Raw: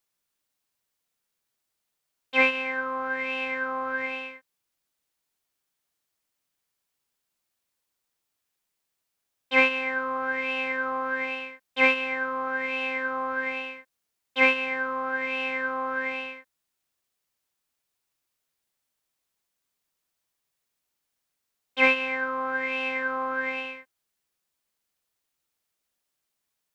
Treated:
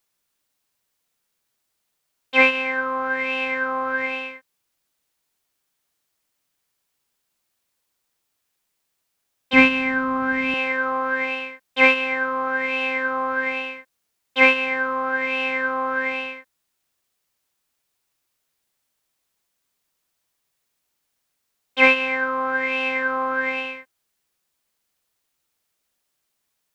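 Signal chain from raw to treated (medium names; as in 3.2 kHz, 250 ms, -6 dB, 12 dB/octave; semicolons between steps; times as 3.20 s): 9.53–10.54 s: resonant low shelf 310 Hz +10 dB, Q 1.5; trim +5.5 dB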